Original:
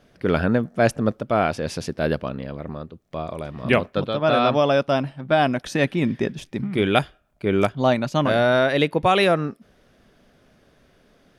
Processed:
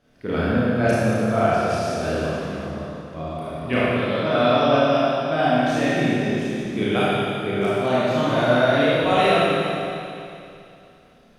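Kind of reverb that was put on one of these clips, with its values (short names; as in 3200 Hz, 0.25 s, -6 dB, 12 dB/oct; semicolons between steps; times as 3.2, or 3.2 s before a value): Schroeder reverb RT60 2.7 s, combs from 25 ms, DRR -9.5 dB; gain -9 dB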